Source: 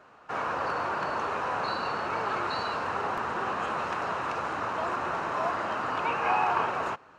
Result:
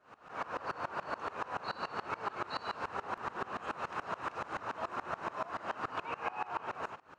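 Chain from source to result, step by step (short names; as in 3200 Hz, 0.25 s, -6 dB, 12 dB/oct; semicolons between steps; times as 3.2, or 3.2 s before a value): compressor 6:1, threshold -35 dBFS, peak gain reduction 12.5 dB; dB-ramp tremolo swelling 7 Hz, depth 23 dB; gain +5.5 dB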